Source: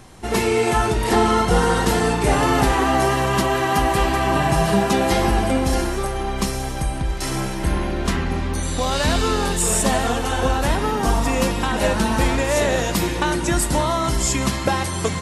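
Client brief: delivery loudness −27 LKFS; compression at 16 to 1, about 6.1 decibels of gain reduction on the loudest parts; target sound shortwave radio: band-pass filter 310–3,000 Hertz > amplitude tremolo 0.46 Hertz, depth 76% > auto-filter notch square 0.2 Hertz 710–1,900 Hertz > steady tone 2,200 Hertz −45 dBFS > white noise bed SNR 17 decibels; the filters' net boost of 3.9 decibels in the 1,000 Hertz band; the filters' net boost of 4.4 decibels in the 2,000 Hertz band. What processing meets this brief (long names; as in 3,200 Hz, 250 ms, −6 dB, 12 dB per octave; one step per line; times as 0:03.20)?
parametric band 1,000 Hz +4 dB
parametric band 2,000 Hz +5 dB
downward compressor 16 to 1, threshold −17 dBFS
band-pass filter 310–3,000 Hz
amplitude tremolo 0.46 Hz, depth 76%
auto-filter notch square 0.2 Hz 710–1,900 Hz
steady tone 2,200 Hz −45 dBFS
white noise bed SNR 17 dB
level +4 dB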